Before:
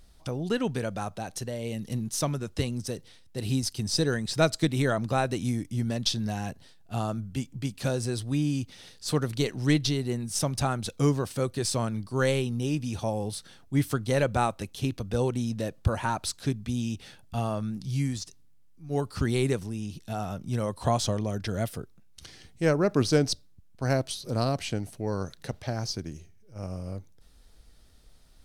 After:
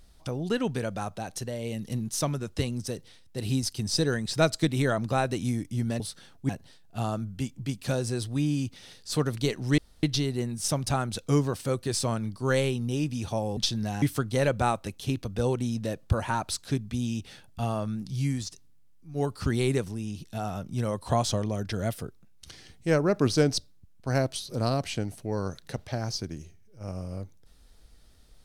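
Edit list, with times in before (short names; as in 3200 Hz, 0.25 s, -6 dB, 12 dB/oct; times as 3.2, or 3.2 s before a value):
6–6.45 swap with 13.28–13.77
9.74 insert room tone 0.25 s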